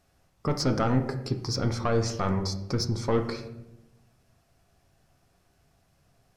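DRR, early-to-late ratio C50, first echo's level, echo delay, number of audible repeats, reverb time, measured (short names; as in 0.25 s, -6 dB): 4.5 dB, 10.0 dB, none, none, none, 0.95 s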